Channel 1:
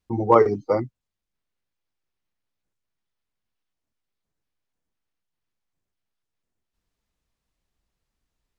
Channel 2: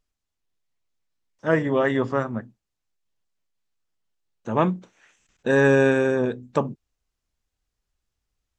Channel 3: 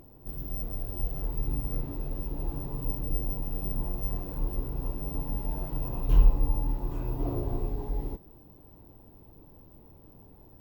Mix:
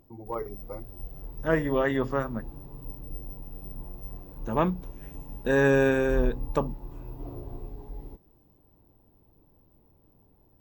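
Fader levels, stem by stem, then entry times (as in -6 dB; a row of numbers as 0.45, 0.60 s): -18.5, -4.0, -8.5 dB; 0.00, 0.00, 0.00 s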